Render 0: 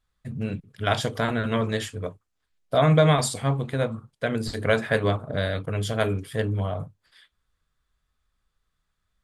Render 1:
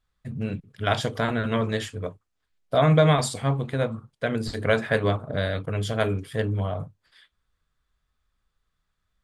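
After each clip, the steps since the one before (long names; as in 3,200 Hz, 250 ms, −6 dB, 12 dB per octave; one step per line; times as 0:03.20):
high-shelf EQ 9,400 Hz −7 dB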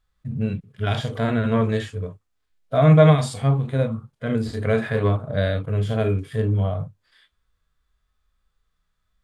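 harmonic and percussive parts rebalanced percussive −18 dB
level +6 dB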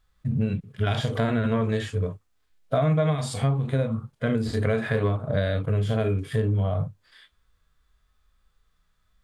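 downward compressor 6 to 1, threshold −25 dBFS, peak gain reduction 15.5 dB
level +4.5 dB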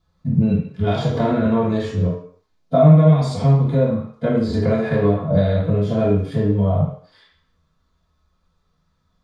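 convolution reverb RT60 0.55 s, pre-delay 3 ms, DRR −11 dB
level −10 dB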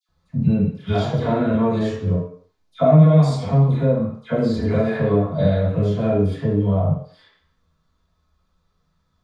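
all-pass dispersion lows, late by 89 ms, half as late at 1,600 Hz
level −1 dB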